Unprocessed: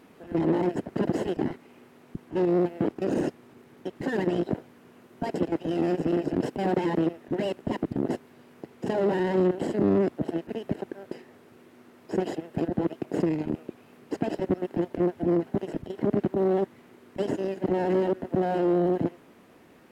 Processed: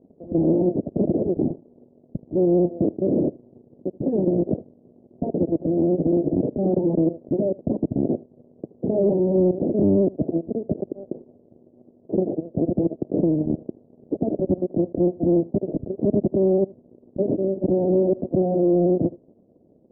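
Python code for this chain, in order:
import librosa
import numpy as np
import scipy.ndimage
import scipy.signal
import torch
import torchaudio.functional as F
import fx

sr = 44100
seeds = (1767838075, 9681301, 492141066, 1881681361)

p1 = fx.low_shelf(x, sr, hz=250.0, db=11.5)
p2 = fx.leveller(p1, sr, passes=2)
p3 = scipy.signal.sosfilt(scipy.signal.ellip(4, 1.0, 80, 610.0, 'lowpass', fs=sr, output='sos'), p2)
p4 = fx.tilt_eq(p3, sr, slope=2.5)
y = p4 + fx.echo_single(p4, sr, ms=78, db=-22.5, dry=0)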